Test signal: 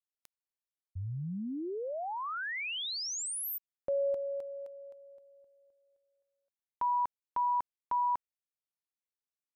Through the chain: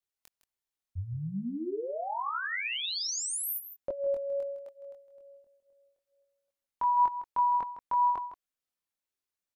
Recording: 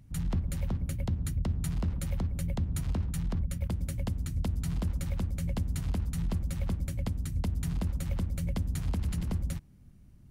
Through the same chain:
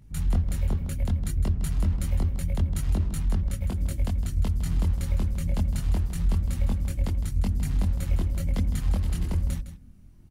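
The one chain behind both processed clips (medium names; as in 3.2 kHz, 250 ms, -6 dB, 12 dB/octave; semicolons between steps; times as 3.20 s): chorus voices 6, 0.24 Hz, delay 23 ms, depth 2.8 ms; delay 159 ms -12 dB; trim +6 dB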